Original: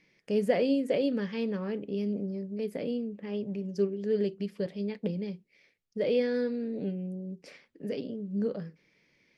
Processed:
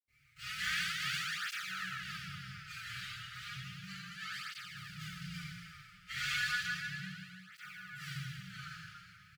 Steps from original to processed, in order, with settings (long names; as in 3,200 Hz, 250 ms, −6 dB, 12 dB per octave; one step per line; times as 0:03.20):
running median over 25 samples
mains-hum notches 50/100/150 Hz
slap from a distant wall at 240 metres, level −8 dB
0:04.43–0:05.22: compressor whose output falls as the input rises −36 dBFS, ratio −0.5
linear-phase brick-wall band-stop 150–1,200 Hz
convolution reverb RT60 2.2 s, pre-delay 76 ms
through-zero flanger with one copy inverted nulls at 0.33 Hz, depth 6.6 ms
level +9.5 dB